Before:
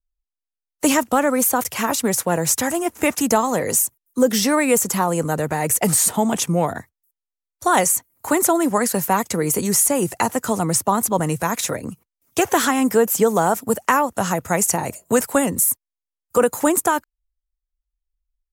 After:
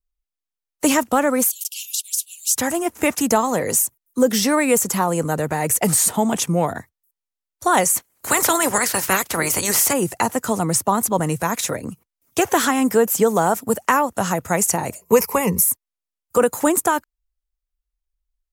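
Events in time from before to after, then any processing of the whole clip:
1.50–2.56 s: steep high-pass 2.8 kHz 72 dB/octave
7.95–9.92 s: spectral peaks clipped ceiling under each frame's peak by 21 dB
15.01–15.62 s: rippled EQ curve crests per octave 0.82, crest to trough 14 dB

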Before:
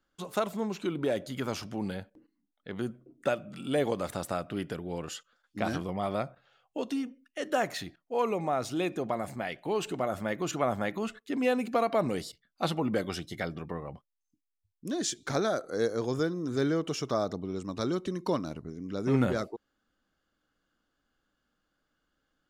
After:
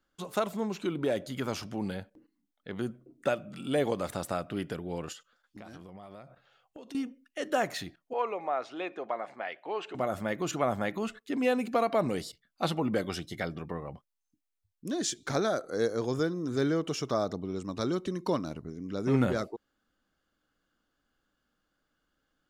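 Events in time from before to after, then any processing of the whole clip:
5.12–6.95 s: compression 10:1, threshold -43 dBFS
8.13–9.95 s: band-pass 520–2700 Hz

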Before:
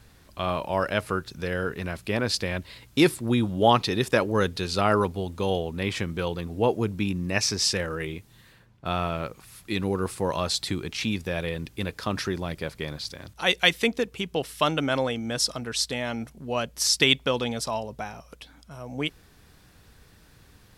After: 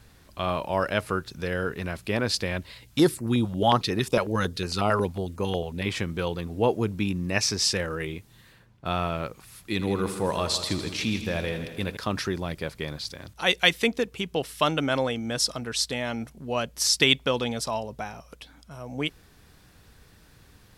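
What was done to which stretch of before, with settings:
2.72–5.86 s: step-sequenced notch 11 Hz 290–3500 Hz
9.71–11.97 s: multi-head delay 81 ms, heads first and second, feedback 56%, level -13 dB

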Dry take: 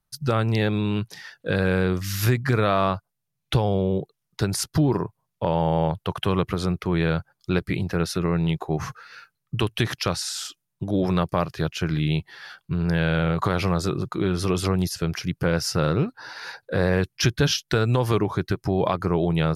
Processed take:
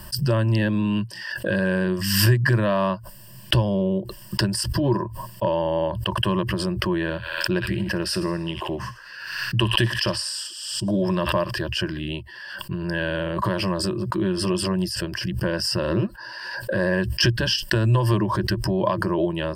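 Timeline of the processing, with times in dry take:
7.02–11.51 s: feedback echo behind a high-pass 60 ms, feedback 66%, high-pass 1.7 kHz, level -11 dB
whole clip: rippled EQ curve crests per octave 1.3, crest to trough 16 dB; swell ahead of each attack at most 44 dB/s; trim -3.5 dB

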